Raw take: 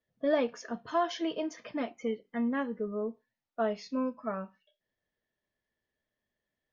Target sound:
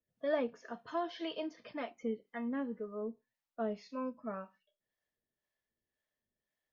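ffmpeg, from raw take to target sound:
ffmpeg -i in.wav -filter_complex "[0:a]acrossover=split=2900[link_01][link_02];[link_02]acompressor=threshold=-52dB:ratio=4:attack=1:release=60[link_03];[link_01][link_03]amix=inputs=2:normalize=0,acrossover=split=510[link_04][link_05];[link_04]aeval=exprs='val(0)*(1-0.7/2+0.7/2*cos(2*PI*1.9*n/s))':channel_layout=same[link_06];[link_05]aeval=exprs='val(0)*(1-0.7/2-0.7/2*cos(2*PI*1.9*n/s))':channel_layout=same[link_07];[link_06][link_07]amix=inputs=2:normalize=0,asettb=1/sr,asplit=3[link_08][link_09][link_10];[link_08]atrim=end=0.974[link_11];[link_09]atrim=start=0.97:end=1.73,asetpts=PTS-STARTPTS,afade=type=in:duration=0.004:curve=qsin,afade=type=out:start_time=0.756:duration=0.004:curve=qsin,lowpass=frequency=4600:width_type=q:width=2.5[link_12];[link_10]atrim=start=1.726[link_13];[link_11][link_12]acrossfade=duration=0.004:curve1=hsin:curve2=qsin[link_14];[link_14][link_13]acrossfade=duration=0.004:curve1=qsin:curve2=hsin,volume=-2dB" out.wav

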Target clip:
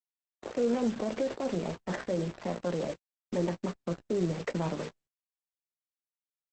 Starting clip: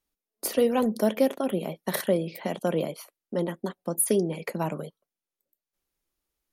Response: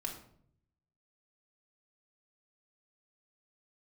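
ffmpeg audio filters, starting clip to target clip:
-filter_complex "[0:a]acrossover=split=2500[link_01][link_02];[link_02]acompressor=threshold=-48dB:ratio=4:attack=1:release=60[link_03];[link_01][link_03]amix=inputs=2:normalize=0,asplit=3[link_04][link_05][link_06];[link_04]afade=type=out:start_time=1.72:duration=0.02[link_07];[link_05]bandreject=frequency=50:width_type=h:width=6,bandreject=frequency=100:width_type=h:width=6,bandreject=frequency=150:width_type=h:width=6,bandreject=frequency=200:width_type=h:width=6,bandreject=frequency=250:width_type=h:width=6,bandreject=frequency=300:width_type=h:width=6,bandreject=frequency=350:width_type=h:width=6,bandreject=frequency=400:width_type=h:width=6,bandreject=frequency=450:width_type=h:width=6,bandreject=frequency=500:width_type=h:width=6,afade=type=in:start_time=1.72:duration=0.02,afade=type=out:start_time=2.45:duration=0.02[link_08];[link_06]afade=type=in:start_time=2.45:duration=0.02[link_09];[link_07][link_08][link_09]amix=inputs=3:normalize=0,lowpass=frequency=4500:width=0.5412,lowpass=frequency=4500:width=1.3066,asettb=1/sr,asplit=3[link_10][link_11][link_12];[link_10]atrim=end=3.634[link_13];[link_11]atrim=start=3.63:end=4.69,asetpts=PTS-STARTPTS,afade=type=in:duration=0.004:curve=qsin,afade=type=out:start_time=1.056:duration=0.004:curve=qsin,lowshelf=frequency=70:gain=11.5[link_14];[link_12]atrim=start=4.686[link_15];[link_13][link_14]acrossfade=duration=0.004:curve1=hsin:curve2=qsin[link_16];[link_16][link_15]acrossfade=duration=0.004:curve1=qsin:curve2=hsin,alimiter=limit=-21.5dB:level=0:latency=1:release=49,adynamicsmooth=sensitivity=7:basefreq=660,acrusher=bits=6:mix=0:aa=0.000001,asplit=2[link_17][link_18];[link_18]adelay=17,volume=-9dB[link_19];[link_17][link_19]amix=inputs=2:normalize=0" -ar 48000 -c:a libopus -b:a 10k

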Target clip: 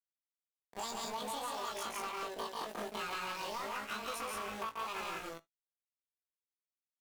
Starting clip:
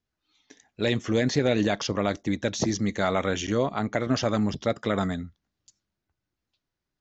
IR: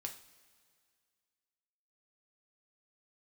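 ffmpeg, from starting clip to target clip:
-filter_complex "[0:a]afwtdn=0.0178,highshelf=frequency=6600:gain=-2.5,acrossover=split=440|3000[link_01][link_02][link_03];[link_01]acompressor=threshold=-38dB:ratio=4[link_04];[link_04][link_02][link_03]amix=inputs=3:normalize=0,aeval=exprs='val(0)*gte(abs(val(0)),0.0188)':channel_layout=same,asetrate=85689,aresample=44100,atempo=0.514651,asoftclip=type=tanh:threshold=-26dB,asplit=2[link_05][link_06];[link_06]adelay=18,volume=-5dB[link_07];[link_05][link_07]amix=inputs=2:normalize=0,aecho=1:1:137|174.9:0.631|0.794,asplit=2[link_08][link_09];[1:a]atrim=start_sample=2205,atrim=end_sample=3528[link_10];[link_09][link_10]afir=irnorm=-1:irlink=0,volume=-8dB[link_11];[link_08][link_11]amix=inputs=2:normalize=0,acompressor=threshold=-31dB:ratio=6,volume=-6dB"

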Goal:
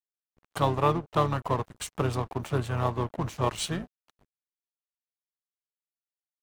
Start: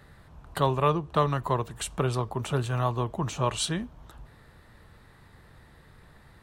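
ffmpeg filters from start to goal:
ffmpeg -i in.wav -filter_complex "[0:a]aeval=exprs='sgn(val(0))*max(abs(val(0))-0.0106,0)':channel_layout=same,asplit=2[link_01][link_02];[link_02]asetrate=33038,aresample=44100,atempo=1.33484,volume=-8dB[link_03];[link_01][link_03]amix=inputs=2:normalize=0,adynamicequalizer=threshold=0.00794:dfrequency=2300:dqfactor=0.7:tfrequency=2300:tqfactor=0.7:attack=5:release=100:ratio=0.375:range=2:mode=cutabove:tftype=highshelf" out.wav

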